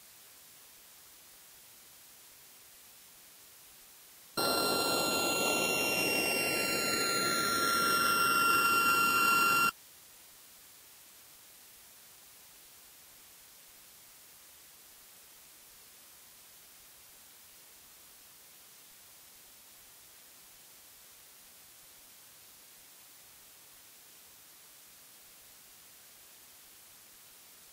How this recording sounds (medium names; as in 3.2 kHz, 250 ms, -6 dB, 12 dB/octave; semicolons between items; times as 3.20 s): a buzz of ramps at a fixed pitch in blocks of 32 samples; phasing stages 12, 0.08 Hz, lowest notch 670–2600 Hz; a quantiser's noise floor 10-bit, dither triangular; Vorbis